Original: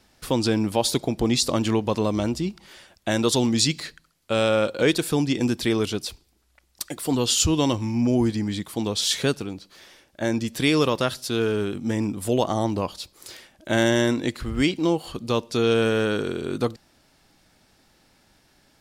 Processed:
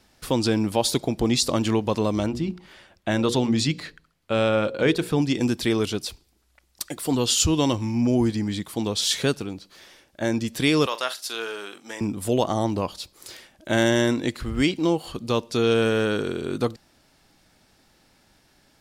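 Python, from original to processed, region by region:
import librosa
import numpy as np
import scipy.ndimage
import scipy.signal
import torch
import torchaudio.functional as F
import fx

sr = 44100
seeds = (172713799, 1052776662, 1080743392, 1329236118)

y = fx.chain(x, sr, fx.bass_treble(bass_db=2, treble_db=-9),
    fx.hum_notches(base_hz=60, count=9), at=(2.26, 5.22))
y = fx.chain(y, sr, fx.highpass(hz=770.0, slope=12),
    fx.doubler(ms=44.0, db=-13.0), at=(10.86, 12.01))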